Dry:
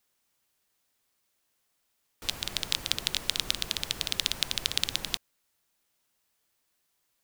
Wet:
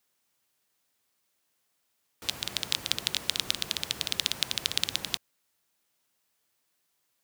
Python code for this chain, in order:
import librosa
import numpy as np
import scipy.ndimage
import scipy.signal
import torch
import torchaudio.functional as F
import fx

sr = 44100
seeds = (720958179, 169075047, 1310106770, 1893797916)

y = scipy.signal.sosfilt(scipy.signal.butter(2, 81.0, 'highpass', fs=sr, output='sos'), x)